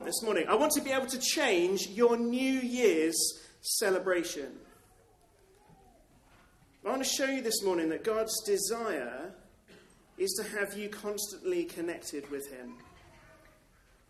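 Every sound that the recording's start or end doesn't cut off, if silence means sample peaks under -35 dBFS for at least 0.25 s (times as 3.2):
3.65–4.47
6.85–9.27
10.2–12.6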